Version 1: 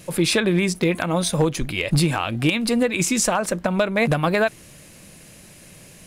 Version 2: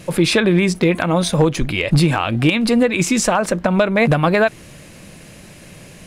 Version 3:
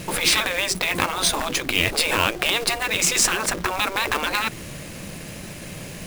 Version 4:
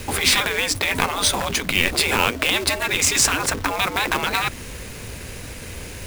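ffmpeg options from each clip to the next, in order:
-filter_complex "[0:a]highshelf=f=6100:g=-10,asplit=2[s0][s1];[s1]alimiter=limit=0.126:level=0:latency=1:release=111,volume=0.708[s2];[s0][s2]amix=inputs=2:normalize=0,volume=1.33"
-af "afftfilt=real='re*lt(hypot(re,im),0.316)':imag='im*lt(hypot(re,im),0.316)':win_size=1024:overlap=0.75,acrusher=bits=2:mode=log:mix=0:aa=0.000001,volume=1.58"
-af "afreqshift=-88,volume=1.19"

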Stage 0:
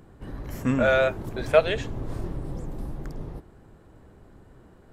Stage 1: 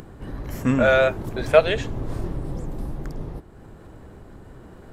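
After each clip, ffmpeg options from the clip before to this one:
-af "acompressor=mode=upward:threshold=0.0112:ratio=2.5,volume=1.5"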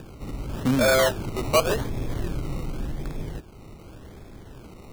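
-filter_complex "[0:a]acrossover=split=260[s0][s1];[s1]acrusher=samples=21:mix=1:aa=0.000001:lfo=1:lforange=12.6:lforate=0.88[s2];[s0][s2]amix=inputs=2:normalize=0,asoftclip=type=tanh:threshold=0.224"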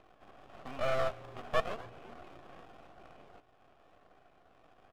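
-filter_complex "[0:a]asplit=3[s0][s1][s2];[s0]bandpass=f=730:t=q:w=8,volume=1[s3];[s1]bandpass=f=1090:t=q:w=8,volume=0.501[s4];[s2]bandpass=f=2440:t=q:w=8,volume=0.355[s5];[s3][s4][s5]amix=inputs=3:normalize=0,aeval=exprs='max(val(0),0)':c=same,asplit=5[s6][s7][s8][s9][s10];[s7]adelay=251,afreqshift=-120,volume=0.0708[s11];[s8]adelay=502,afreqshift=-240,volume=0.0417[s12];[s9]adelay=753,afreqshift=-360,volume=0.0245[s13];[s10]adelay=1004,afreqshift=-480,volume=0.0146[s14];[s6][s11][s12][s13][s14]amix=inputs=5:normalize=0,volume=1.19"

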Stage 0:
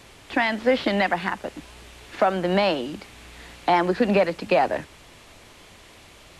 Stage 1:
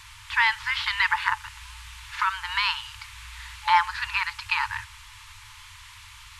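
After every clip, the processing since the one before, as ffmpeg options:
-af "afftfilt=real='re*(1-between(b*sr/4096,110,860))':imag='im*(1-between(b*sr/4096,110,860))':win_size=4096:overlap=0.75,volume=1.5"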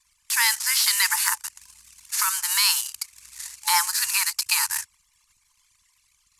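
-af "anlmdn=0.631,aexciter=amount=7.2:drive=7:freq=4900,aemphasis=mode=production:type=riaa,volume=0.596"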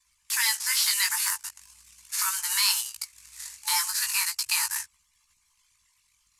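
-filter_complex "[0:a]acrossover=split=380|2200[s0][s1][s2];[s1]alimiter=limit=0.0841:level=0:latency=1:release=208[s3];[s0][s3][s2]amix=inputs=3:normalize=0,flanger=delay=15.5:depth=4.8:speed=0.4"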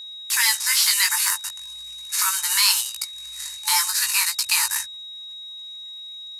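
-af "aeval=exprs='val(0)+0.01*sin(2*PI*3800*n/s)':c=same,volume=1.88"

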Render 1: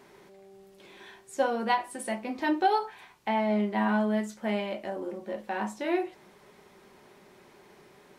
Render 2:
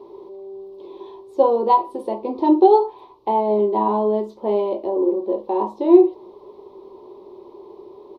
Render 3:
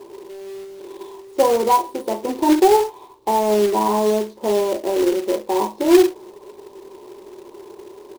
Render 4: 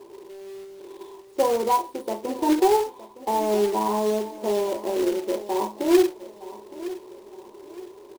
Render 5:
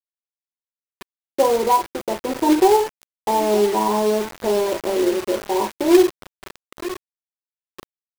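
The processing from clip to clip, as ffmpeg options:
-af "firequalizer=gain_entry='entry(110,0);entry(160,-12);entry(360,14);entry(690,-1);entry(1000,8);entry(1500,-27);entry(2200,-18);entry(3800,-5);entry(7400,-27);entry(13000,-16)':delay=0.05:min_phase=1,volume=1.88"
-filter_complex "[0:a]asplit=2[s0][s1];[s1]alimiter=limit=0.237:level=0:latency=1:release=32,volume=0.794[s2];[s0][s2]amix=inputs=2:normalize=0,acrusher=bits=3:mode=log:mix=0:aa=0.000001,volume=0.668"
-af "aecho=1:1:915|1830|2745:0.158|0.0571|0.0205,volume=0.531"
-af "aeval=exprs='val(0)*gte(abs(val(0)),0.0282)':c=same,volume=1.68"

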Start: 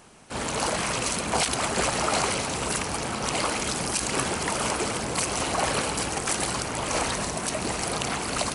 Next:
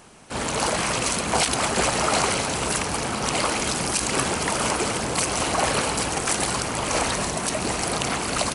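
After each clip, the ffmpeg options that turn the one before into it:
-filter_complex "[0:a]asplit=5[s0][s1][s2][s3][s4];[s1]adelay=232,afreqshift=100,volume=0.2[s5];[s2]adelay=464,afreqshift=200,volume=0.0933[s6];[s3]adelay=696,afreqshift=300,volume=0.0442[s7];[s4]adelay=928,afreqshift=400,volume=0.0207[s8];[s0][s5][s6][s7][s8]amix=inputs=5:normalize=0,volume=1.41"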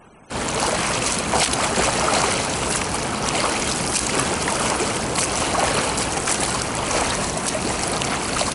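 -af "afftfilt=real='re*gte(hypot(re,im),0.00355)':imag='im*gte(hypot(re,im),0.00355)':win_size=1024:overlap=0.75,volume=1.33"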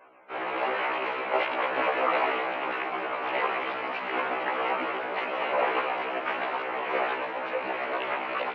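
-af "highpass=f=510:t=q:w=0.5412,highpass=f=510:t=q:w=1.307,lowpass=f=2800:t=q:w=0.5176,lowpass=f=2800:t=q:w=0.7071,lowpass=f=2800:t=q:w=1.932,afreqshift=-110,afftfilt=real='re*1.73*eq(mod(b,3),0)':imag='im*1.73*eq(mod(b,3),0)':win_size=2048:overlap=0.75,volume=0.841"

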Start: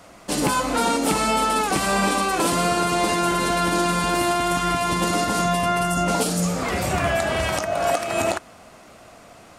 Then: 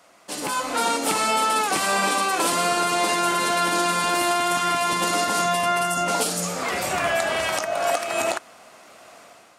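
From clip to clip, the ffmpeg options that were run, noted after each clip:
-af "dynaudnorm=f=400:g=3:m=2.66,highpass=f=580:p=1,volume=0.531"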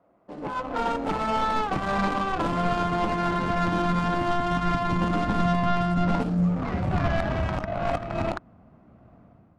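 -af "adynamicsmooth=sensitivity=0.5:basefreq=580,asubboost=boost=10:cutoff=150"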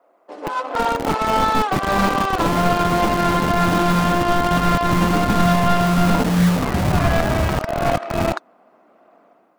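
-filter_complex "[0:a]acrossover=split=330|3400[s0][s1][s2];[s0]acrusher=bits=4:mix=0:aa=0.000001[s3];[s2]aphaser=in_gain=1:out_gain=1:delay=4.2:decay=0.72:speed=1.1:type=triangular[s4];[s3][s1][s4]amix=inputs=3:normalize=0,volume=2.24"

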